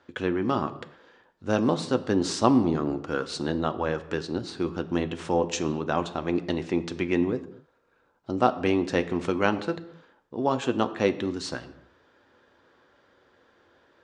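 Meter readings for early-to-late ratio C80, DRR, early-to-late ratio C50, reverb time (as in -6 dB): 16.5 dB, 9.0 dB, 15.0 dB, no single decay rate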